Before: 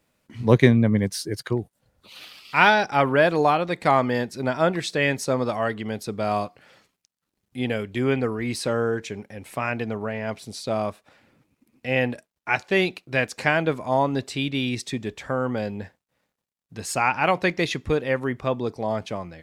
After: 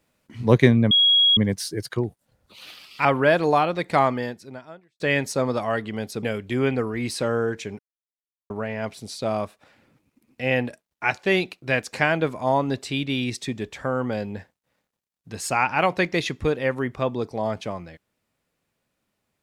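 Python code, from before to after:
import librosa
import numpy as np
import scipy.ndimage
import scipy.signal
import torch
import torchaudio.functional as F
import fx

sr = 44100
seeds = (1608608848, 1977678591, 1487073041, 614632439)

y = fx.edit(x, sr, fx.insert_tone(at_s=0.91, length_s=0.46, hz=3310.0, db=-13.5),
    fx.cut(start_s=2.59, length_s=0.38),
    fx.fade_out_span(start_s=3.93, length_s=0.99, curve='qua'),
    fx.cut(start_s=6.15, length_s=1.53),
    fx.silence(start_s=9.24, length_s=0.71), tone=tone)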